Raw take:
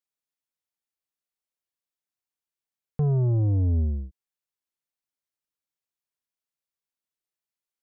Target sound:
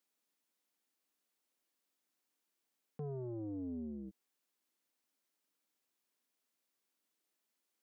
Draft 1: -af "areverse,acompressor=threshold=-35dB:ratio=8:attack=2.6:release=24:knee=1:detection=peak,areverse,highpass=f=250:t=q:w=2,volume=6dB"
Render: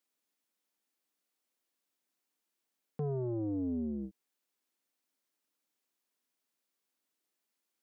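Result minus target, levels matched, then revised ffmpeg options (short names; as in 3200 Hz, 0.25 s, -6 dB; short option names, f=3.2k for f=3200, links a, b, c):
compressor: peak gain reduction -7.5 dB
-af "areverse,acompressor=threshold=-43.5dB:ratio=8:attack=2.6:release=24:knee=1:detection=peak,areverse,highpass=f=250:t=q:w=2,volume=6dB"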